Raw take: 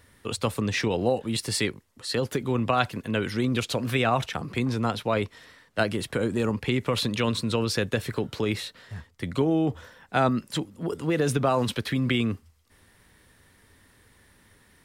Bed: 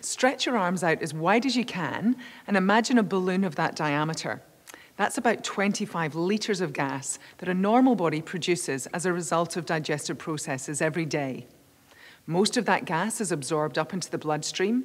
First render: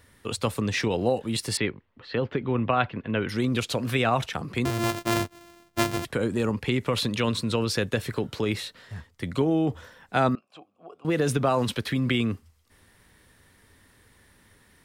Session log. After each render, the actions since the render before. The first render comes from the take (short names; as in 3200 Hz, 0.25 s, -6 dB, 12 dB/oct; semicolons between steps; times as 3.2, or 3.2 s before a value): 1.57–3.29 LPF 3100 Hz 24 dB/oct; 4.65–6.05 sample sorter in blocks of 128 samples; 10.35–11.05 vowel filter a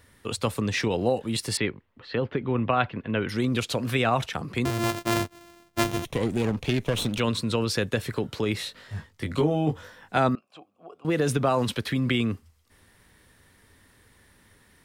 2.16–2.56 air absorption 71 m; 5.84–7.2 minimum comb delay 0.31 ms; 8.58–10.18 doubler 20 ms -3 dB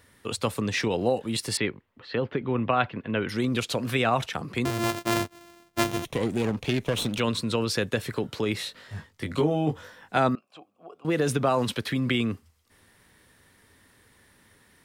low shelf 68 Hz -9.5 dB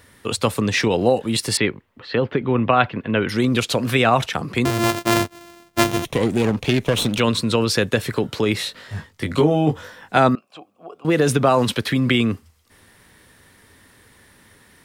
gain +7.5 dB